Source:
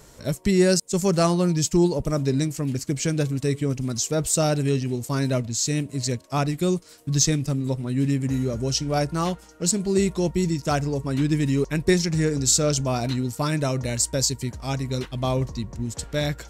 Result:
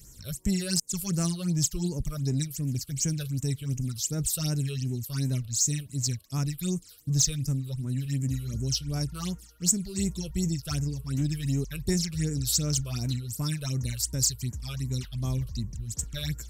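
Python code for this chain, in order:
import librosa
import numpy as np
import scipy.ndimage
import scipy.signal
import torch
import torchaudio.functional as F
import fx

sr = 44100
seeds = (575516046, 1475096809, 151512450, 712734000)

p1 = fx.tone_stack(x, sr, knobs='6-0-2')
p2 = fx.phaser_stages(p1, sr, stages=8, low_hz=240.0, high_hz=4100.0, hz=2.7, feedback_pct=35)
p3 = fx.high_shelf(p2, sr, hz=6000.0, db=10.5)
p4 = 10.0 ** (-33.0 / 20.0) * np.tanh(p3 / 10.0 ** (-33.0 / 20.0))
p5 = p3 + F.gain(torch.from_numpy(p4), -3.0).numpy()
y = F.gain(torch.from_numpy(p5), 7.0).numpy()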